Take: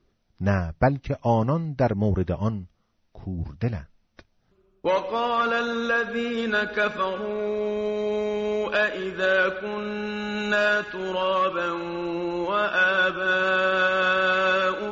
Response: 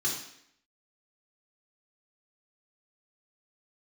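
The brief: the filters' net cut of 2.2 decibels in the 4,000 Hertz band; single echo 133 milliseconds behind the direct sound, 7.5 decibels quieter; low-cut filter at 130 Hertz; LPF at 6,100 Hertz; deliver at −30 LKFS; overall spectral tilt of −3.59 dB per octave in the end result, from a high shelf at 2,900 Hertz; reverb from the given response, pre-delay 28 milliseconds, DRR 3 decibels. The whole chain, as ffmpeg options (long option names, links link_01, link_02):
-filter_complex "[0:a]highpass=130,lowpass=6100,highshelf=frequency=2900:gain=3.5,equalizer=frequency=4000:width_type=o:gain=-5,aecho=1:1:133:0.422,asplit=2[link_01][link_02];[1:a]atrim=start_sample=2205,adelay=28[link_03];[link_02][link_03]afir=irnorm=-1:irlink=0,volume=-9.5dB[link_04];[link_01][link_04]amix=inputs=2:normalize=0,volume=-8.5dB"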